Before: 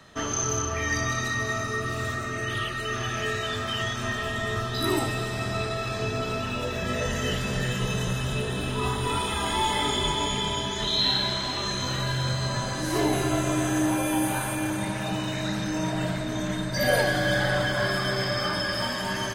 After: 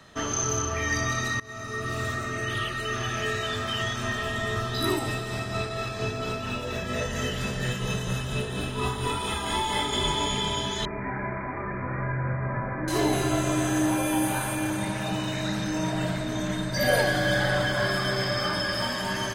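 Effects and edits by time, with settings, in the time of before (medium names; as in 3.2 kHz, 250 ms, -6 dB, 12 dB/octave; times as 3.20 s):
1.40–1.95 s: fade in, from -22.5 dB
4.89–9.93 s: tremolo 4.3 Hz, depth 38%
10.85–12.88 s: Chebyshev low-pass 2.4 kHz, order 10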